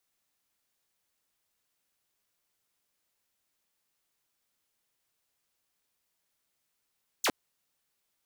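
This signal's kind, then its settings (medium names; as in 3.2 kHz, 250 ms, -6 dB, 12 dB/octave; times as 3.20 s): laser zap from 8.3 kHz, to 200 Hz, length 0.06 s saw, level -21.5 dB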